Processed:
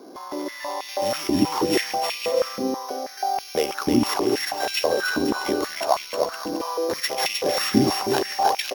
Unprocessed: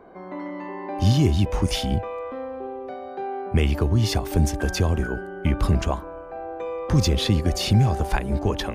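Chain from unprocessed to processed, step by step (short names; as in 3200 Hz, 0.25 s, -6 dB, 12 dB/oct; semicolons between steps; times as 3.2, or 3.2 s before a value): sample sorter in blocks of 8 samples; bouncing-ball echo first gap 0.31 s, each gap 0.65×, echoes 5; stepped high-pass 6.2 Hz 280–2500 Hz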